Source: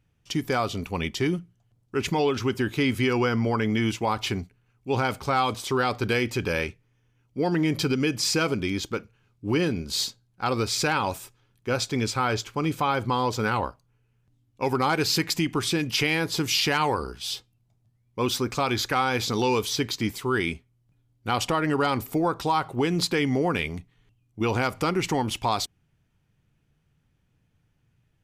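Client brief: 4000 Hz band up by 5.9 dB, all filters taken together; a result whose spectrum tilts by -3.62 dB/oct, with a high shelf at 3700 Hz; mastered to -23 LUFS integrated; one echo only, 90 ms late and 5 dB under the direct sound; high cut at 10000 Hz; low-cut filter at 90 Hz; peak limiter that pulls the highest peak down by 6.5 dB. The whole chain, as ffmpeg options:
-af "highpass=90,lowpass=10k,highshelf=f=3.7k:g=4.5,equalizer=f=4k:t=o:g=4.5,alimiter=limit=-13.5dB:level=0:latency=1,aecho=1:1:90:0.562,volume=1.5dB"

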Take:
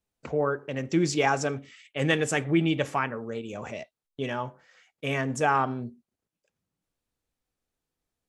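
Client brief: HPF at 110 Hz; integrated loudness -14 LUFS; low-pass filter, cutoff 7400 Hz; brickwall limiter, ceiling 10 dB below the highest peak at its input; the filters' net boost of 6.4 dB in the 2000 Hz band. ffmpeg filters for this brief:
-af "highpass=110,lowpass=7.4k,equalizer=f=2k:t=o:g=8,volume=15.5dB,alimiter=limit=-1dB:level=0:latency=1"

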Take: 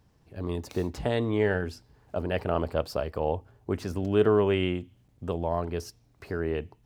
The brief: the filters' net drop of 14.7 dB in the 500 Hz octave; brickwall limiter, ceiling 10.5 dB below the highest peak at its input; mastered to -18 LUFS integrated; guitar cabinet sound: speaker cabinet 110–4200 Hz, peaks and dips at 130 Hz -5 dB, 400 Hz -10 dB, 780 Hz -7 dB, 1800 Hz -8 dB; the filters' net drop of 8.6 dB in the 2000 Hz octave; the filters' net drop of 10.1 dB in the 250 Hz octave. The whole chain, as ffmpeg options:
-af "equalizer=f=250:t=o:g=-8.5,equalizer=f=500:t=o:g=-8.5,equalizer=f=2k:t=o:g=-6,alimiter=level_in=3.5dB:limit=-24dB:level=0:latency=1,volume=-3.5dB,highpass=110,equalizer=f=130:t=q:w=4:g=-5,equalizer=f=400:t=q:w=4:g=-10,equalizer=f=780:t=q:w=4:g=-7,equalizer=f=1.8k:t=q:w=4:g=-8,lowpass=f=4.2k:w=0.5412,lowpass=f=4.2k:w=1.3066,volume=26dB"

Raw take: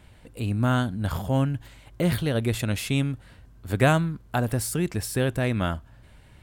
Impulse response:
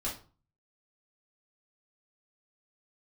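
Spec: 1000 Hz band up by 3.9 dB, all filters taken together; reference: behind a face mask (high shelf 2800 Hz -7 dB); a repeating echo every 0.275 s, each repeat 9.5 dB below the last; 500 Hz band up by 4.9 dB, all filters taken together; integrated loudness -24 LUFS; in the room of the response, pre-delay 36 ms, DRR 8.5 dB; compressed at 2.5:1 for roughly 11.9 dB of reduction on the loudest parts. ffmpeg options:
-filter_complex "[0:a]equalizer=f=500:t=o:g=5,equalizer=f=1k:t=o:g=4.5,acompressor=threshold=-30dB:ratio=2.5,aecho=1:1:275|550|825|1100:0.335|0.111|0.0365|0.012,asplit=2[a][b];[1:a]atrim=start_sample=2205,adelay=36[c];[b][c]afir=irnorm=-1:irlink=0,volume=-12dB[d];[a][d]amix=inputs=2:normalize=0,highshelf=f=2.8k:g=-7,volume=7dB"

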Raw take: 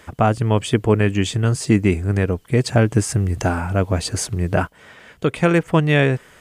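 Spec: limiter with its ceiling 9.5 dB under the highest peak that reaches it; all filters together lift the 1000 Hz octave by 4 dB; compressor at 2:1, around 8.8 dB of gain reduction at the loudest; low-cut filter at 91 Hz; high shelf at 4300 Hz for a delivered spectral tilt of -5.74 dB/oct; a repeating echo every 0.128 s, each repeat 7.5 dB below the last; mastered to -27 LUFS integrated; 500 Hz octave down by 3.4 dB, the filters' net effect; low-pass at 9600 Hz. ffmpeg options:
-af "highpass=91,lowpass=9.6k,equalizer=f=500:t=o:g=-6.5,equalizer=f=1k:t=o:g=8.5,highshelf=f=4.3k:g=-8,acompressor=threshold=-27dB:ratio=2,alimiter=limit=-18dB:level=0:latency=1,aecho=1:1:128|256|384|512|640:0.422|0.177|0.0744|0.0312|0.0131,volume=2.5dB"

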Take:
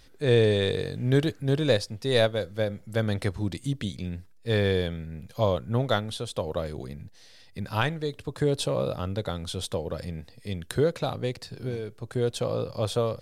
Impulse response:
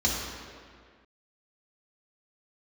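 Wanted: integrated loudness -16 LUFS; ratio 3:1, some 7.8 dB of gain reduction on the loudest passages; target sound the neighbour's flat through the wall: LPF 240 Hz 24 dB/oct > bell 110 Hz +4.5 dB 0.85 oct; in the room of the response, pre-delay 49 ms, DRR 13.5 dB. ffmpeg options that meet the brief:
-filter_complex "[0:a]acompressor=threshold=-27dB:ratio=3,asplit=2[a][b];[1:a]atrim=start_sample=2205,adelay=49[c];[b][c]afir=irnorm=-1:irlink=0,volume=-25dB[d];[a][d]amix=inputs=2:normalize=0,lowpass=f=240:w=0.5412,lowpass=f=240:w=1.3066,equalizer=f=110:t=o:w=0.85:g=4.5,volume=17.5dB"

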